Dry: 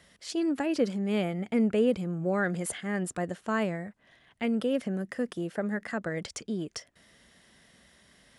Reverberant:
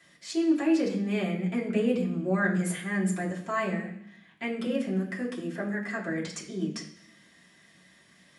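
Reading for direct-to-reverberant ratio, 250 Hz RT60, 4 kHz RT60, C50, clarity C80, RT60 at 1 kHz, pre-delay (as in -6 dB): -6.5 dB, 0.95 s, 0.85 s, 8.0 dB, 11.0 dB, 0.65 s, 3 ms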